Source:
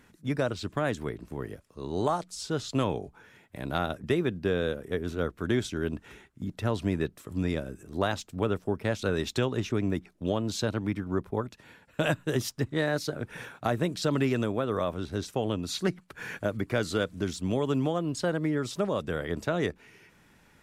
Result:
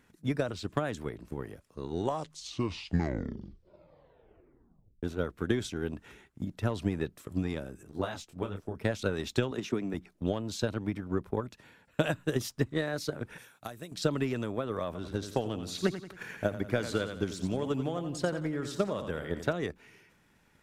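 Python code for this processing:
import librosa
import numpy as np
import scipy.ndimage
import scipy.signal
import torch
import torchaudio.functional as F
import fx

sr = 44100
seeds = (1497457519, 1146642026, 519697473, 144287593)

y = fx.detune_double(x, sr, cents=25, at=(7.91, 8.75))
y = fx.highpass(y, sr, hz=150.0, slope=24, at=(9.51, 9.94))
y = fx.pre_emphasis(y, sr, coefficient=0.8, at=(13.38, 13.92))
y = fx.echo_feedback(y, sr, ms=89, feedback_pct=42, wet_db=-9.5, at=(14.86, 19.53))
y = fx.edit(y, sr, fx.tape_stop(start_s=1.84, length_s=3.19), tone=tone)
y = fx.transient(y, sr, attack_db=9, sustain_db=5)
y = y * 10.0 ** (-7.0 / 20.0)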